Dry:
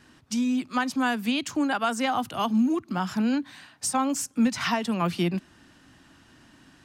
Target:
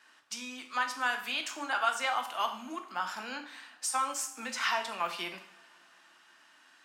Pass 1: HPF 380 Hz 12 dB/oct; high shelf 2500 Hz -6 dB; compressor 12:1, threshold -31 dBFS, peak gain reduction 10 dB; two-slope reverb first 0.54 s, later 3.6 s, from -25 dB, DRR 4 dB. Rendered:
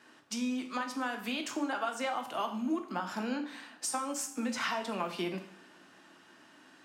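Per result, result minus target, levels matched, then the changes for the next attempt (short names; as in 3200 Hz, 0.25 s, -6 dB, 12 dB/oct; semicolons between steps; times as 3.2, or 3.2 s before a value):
compressor: peak gain reduction +10 dB; 500 Hz band +5.5 dB
remove: compressor 12:1, threshold -31 dBFS, peak gain reduction 10 dB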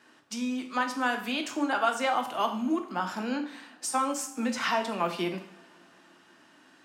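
500 Hz band +5.5 dB
change: HPF 1000 Hz 12 dB/oct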